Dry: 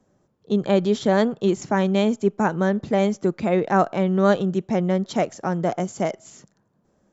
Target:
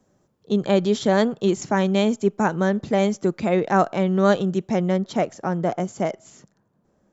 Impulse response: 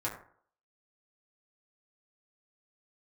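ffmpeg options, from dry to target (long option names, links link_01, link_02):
-af "asetnsamples=nb_out_samples=441:pad=0,asendcmd='4.97 highshelf g -4',highshelf=frequency=3500:gain=4.5"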